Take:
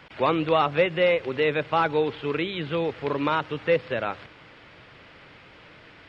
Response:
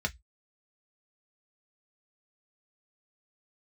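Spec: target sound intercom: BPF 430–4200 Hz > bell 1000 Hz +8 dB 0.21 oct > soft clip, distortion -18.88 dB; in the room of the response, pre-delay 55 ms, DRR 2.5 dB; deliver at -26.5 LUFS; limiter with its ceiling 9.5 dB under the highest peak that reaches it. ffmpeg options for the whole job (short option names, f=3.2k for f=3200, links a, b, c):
-filter_complex "[0:a]alimiter=limit=-19dB:level=0:latency=1,asplit=2[a][b];[1:a]atrim=start_sample=2205,adelay=55[c];[b][c]afir=irnorm=-1:irlink=0,volume=-8dB[d];[a][d]amix=inputs=2:normalize=0,highpass=430,lowpass=4.2k,equalizer=f=1k:t=o:w=0.21:g=8,asoftclip=threshold=-20dB,volume=4dB"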